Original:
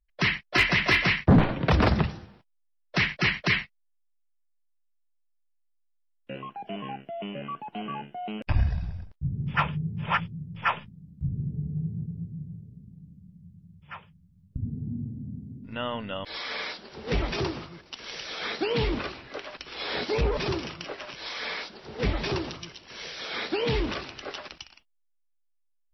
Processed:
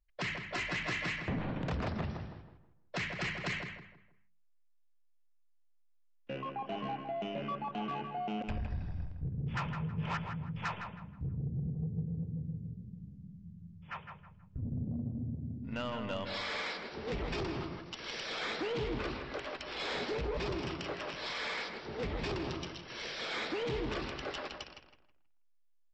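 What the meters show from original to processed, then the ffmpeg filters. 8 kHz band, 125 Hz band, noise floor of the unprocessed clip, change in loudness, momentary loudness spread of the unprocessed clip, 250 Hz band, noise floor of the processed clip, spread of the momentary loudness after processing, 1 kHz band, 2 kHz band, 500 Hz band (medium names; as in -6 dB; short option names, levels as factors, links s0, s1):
no reading, -8.5 dB, -71 dBFS, -9.5 dB, 17 LU, -8.5 dB, -66 dBFS, 11 LU, -7.0 dB, -10.5 dB, -7.0 dB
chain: -filter_complex "[0:a]highshelf=f=4100:g=-6,bandreject=f=50:t=h:w=6,bandreject=f=100:t=h:w=6,bandreject=f=150:t=h:w=6,bandreject=f=200:t=h:w=6,acompressor=threshold=0.0282:ratio=5,aresample=16000,asoftclip=type=tanh:threshold=0.0282,aresample=44100,asplit=2[s0][s1];[s1]adelay=160,lowpass=f=2300:p=1,volume=0.531,asplit=2[s2][s3];[s3]adelay=160,lowpass=f=2300:p=1,volume=0.35,asplit=2[s4][s5];[s5]adelay=160,lowpass=f=2300:p=1,volume=0.35,asplit=2[s6][s7];[s7]adelay=160,lowpass=f=2300:p=1,volume=0.35[s8];[s0][s2][s4][s6][s8]amix=inputs=5:normalize=0"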